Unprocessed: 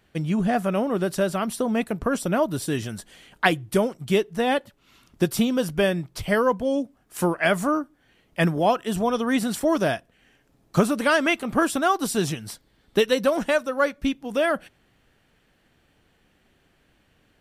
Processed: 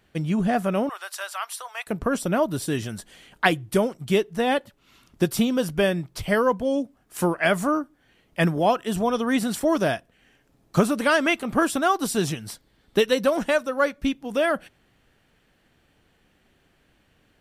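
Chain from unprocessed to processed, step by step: 0.89–1.87 s: inverse Chebyshev high-pass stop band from 200 Hz, stop band 70 dB

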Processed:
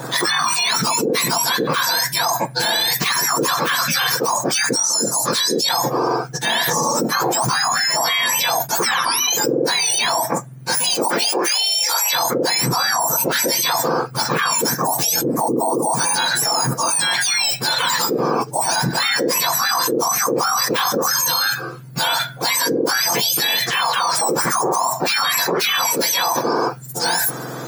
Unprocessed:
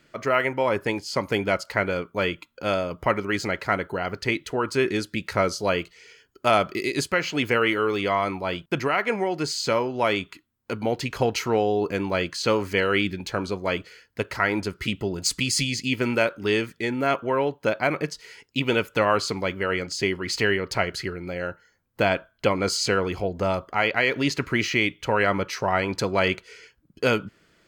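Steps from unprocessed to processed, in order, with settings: spectrum inverted on a logarithmic axis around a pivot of 1.5 kHz; 4.72–5.69 s: high-order bell 6.3 kHz +12.5 dB; 10.90–12.12 s: high-pass 160 Hz -> 670 Hz 24 dB/octave; level flattener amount 100%; trim -8 dB

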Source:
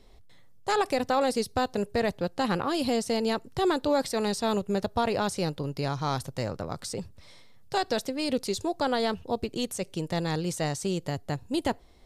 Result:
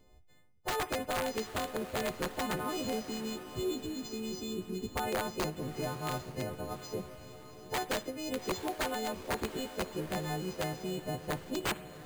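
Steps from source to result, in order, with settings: partials quantised in pitch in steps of 3 st; time-frequency box 3.00–4.95 s, 450–2100 Hz -29 dB; bass shelf 75 Hz +3 dB; harmonic-percussive split harmonic -9 dB; treble shelf 3.8 kHz -12 dB; integer overflow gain 25 dB; echo that smears into a reverb 770 ms, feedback 48%, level -12 dB; reverberation RT60 0.75 s, pre-delay 51 ms, DRR 17 dB; careless resampling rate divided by 4×, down filtered, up hold

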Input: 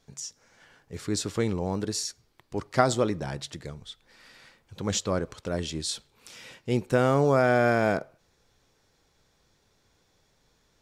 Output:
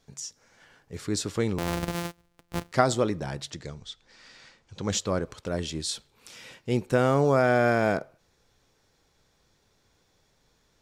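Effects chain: 1.58–2.72 s: sorted samples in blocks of 256 samples; 3.51–4.91 s: resonant low-pass 6.5 kHz, resonance Q 1.6

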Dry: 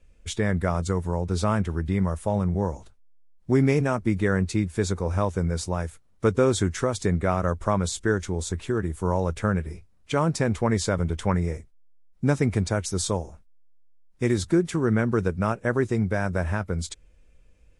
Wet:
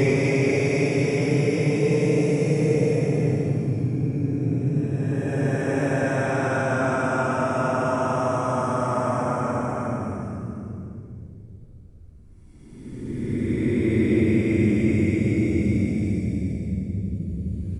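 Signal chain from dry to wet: Paulstretch 38×, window 0.05 s, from 3.71 s; frequency-shifting echo 86 ms, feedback 56%, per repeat +71 Hz, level -13 dB

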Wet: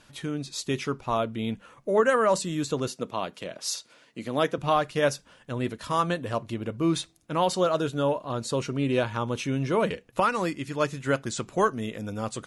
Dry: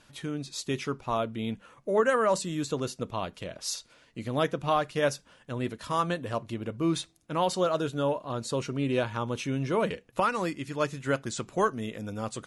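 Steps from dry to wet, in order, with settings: 2.88–4.58 s: high-pass 180 Hz 12 dB/octave; trim +2.5 dB

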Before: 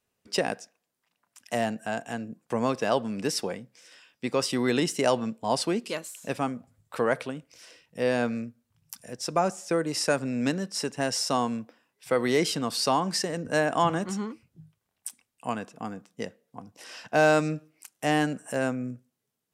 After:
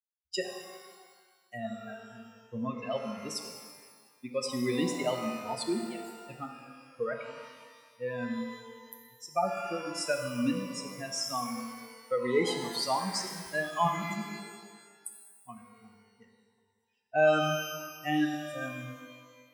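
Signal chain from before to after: expander on every frequency bin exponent 3; pitch-shifted reverb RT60 1.6 s, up +12 st, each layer -8 dB, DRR 4 dB

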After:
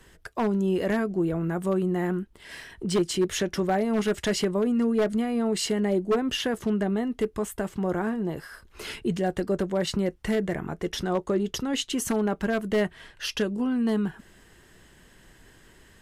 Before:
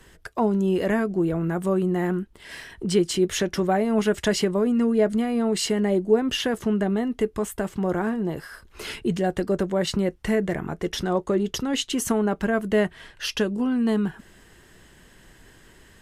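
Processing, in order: wavefolder -13.5 dBFS; trim -2.5 dB

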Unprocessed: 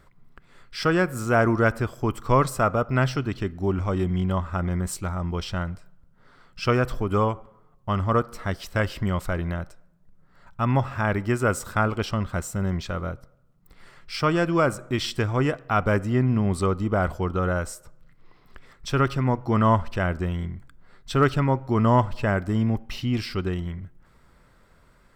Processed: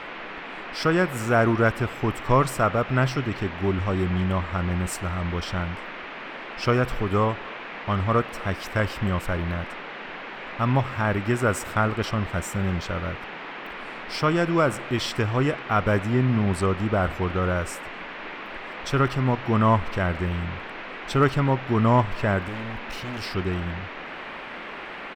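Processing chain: speakerphone echo 260 ms, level -23 dB; 22.48–23.22 s: overload inside the chain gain 32.5 dB; band noise 180–2500 Hz -37 dBFS

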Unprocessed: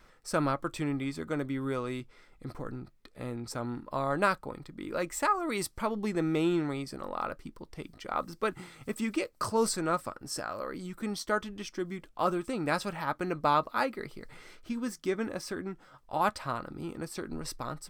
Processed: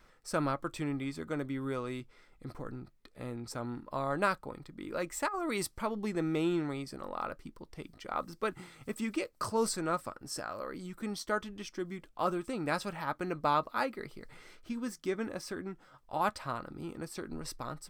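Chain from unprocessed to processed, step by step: 5.28–5.75 s: compressor with a negative ratio -31 dBFS, ratio -1; trim -3 dB

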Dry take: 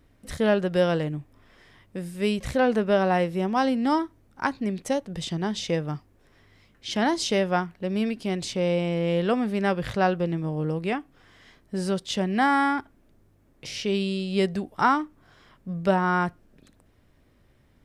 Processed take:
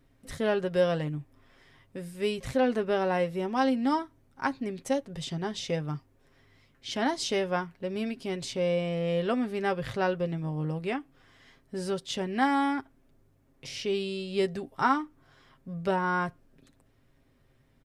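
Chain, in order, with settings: comb 7.5 ms, depth 49%; trim -5 dB

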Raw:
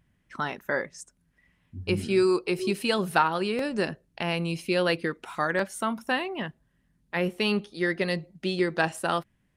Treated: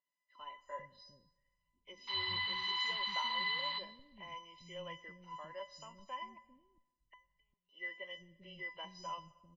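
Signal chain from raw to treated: knee-point frequency compression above 1.8 kHz 1.5:1; small resonant body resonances 570/2800 Hz, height 18 dB, ringing for 50 ms; 2.07–3.79 s: painted sound noise 770–4800 Hz -23 dBFS; treble shelf 6.4 kHz +12 dB; 6.34–7.69 s: inverted gate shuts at -23 dBFS, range -39 dB; bass shelf 220 Hz +6.5 dB; feedback comb 1 kHz, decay 0.25 s, mix 100%; three bands offset in time mids, highs, lows 60/400 ms, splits 290/5900 Hz; on a send at -21 dB: reverberation RT60 1.2 s, pre-delay 98 ms; on the sum: trim +3 dB

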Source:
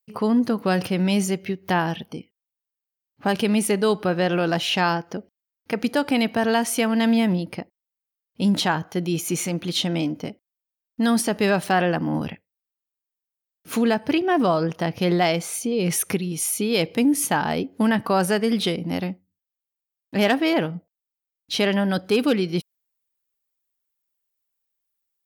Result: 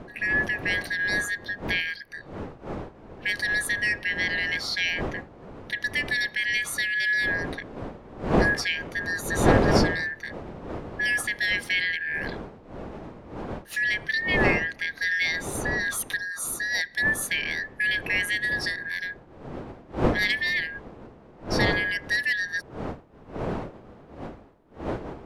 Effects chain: four frequency bands reordered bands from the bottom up 4123; wind noise 520 Hz -26 dBFS; resampled via 32 kHz; trim -6 dB

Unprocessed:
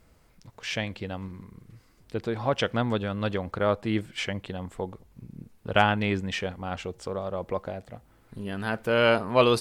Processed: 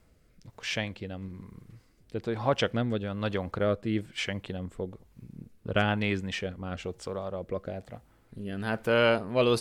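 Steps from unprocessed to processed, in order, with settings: rotary cabinet horn 1.1 Hz

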